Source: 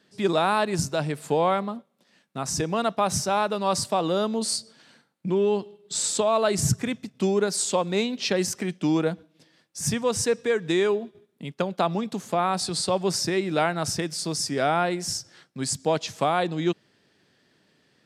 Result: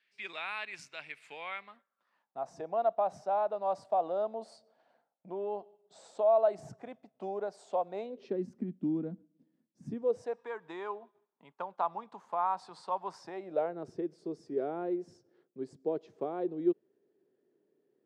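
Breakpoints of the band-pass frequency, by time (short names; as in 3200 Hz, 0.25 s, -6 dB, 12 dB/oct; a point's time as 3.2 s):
band-pass, Q 4.7
1.64 s 2300 Hz
2.43 s 690 Hz
8 s 690 Hz
8.47 s 240 Hz
9.83 s 240 Hz
10.42 s 950 Hz
13.21 s 950 Hz
13.81 s 390 Hz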